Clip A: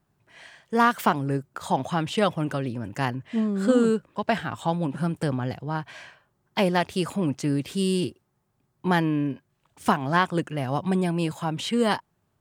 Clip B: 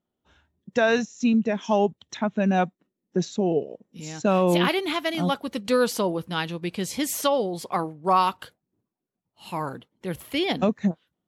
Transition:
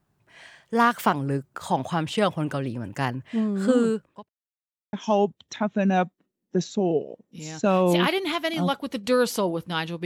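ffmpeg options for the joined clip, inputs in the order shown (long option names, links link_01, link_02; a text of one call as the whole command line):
ffmpeg -i cue0.wav -i cue1.wav -filter_complex "[0:a]apad=whole_dur=10.05,atrim=end=10.05,asplit=2[link_01][link_02];[link_01]atrim=end=4.29,asetpts=PTS-STARTPTS,afade=type=out:start_time=3.62:duration=0.67:curve=qsin[link_03];[link_02]atrim=start=4.29:end=4.93,asetpts=PTS-STARTPTS,volume=0[link_04];[1:a]atrim=start=1.54:end=6.66,asetpts=PTS-STARTPTS,afade=type=in:duration=0.004:curve=hsin[link_05];[link_03][link_04][link_05]concat=n=3:v=0:a=1" out.wav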